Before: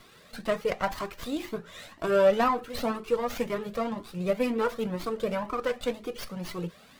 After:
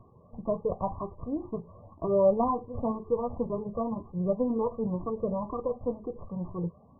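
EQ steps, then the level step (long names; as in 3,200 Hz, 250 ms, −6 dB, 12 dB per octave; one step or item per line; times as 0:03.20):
linear-phase brick-wall low-pass 1,200 Hz
parametric band 94 Hz +13.5 dB 1.3 octaves
−2.0 dB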